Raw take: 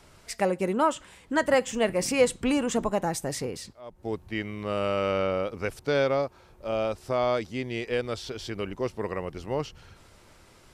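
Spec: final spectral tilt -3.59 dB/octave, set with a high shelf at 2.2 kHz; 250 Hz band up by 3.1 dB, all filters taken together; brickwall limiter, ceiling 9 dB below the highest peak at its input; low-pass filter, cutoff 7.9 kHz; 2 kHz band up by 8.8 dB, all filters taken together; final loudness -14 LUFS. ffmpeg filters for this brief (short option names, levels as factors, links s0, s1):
-af "lowpass=7900,equalizer=f=250:t=o:g=3.5,equalizer=f=2000:t=o:g=6.5,highshelf=f=2200:g=7.5,volume=4.73,alimiter=limit=0.841:level=0:latency=1"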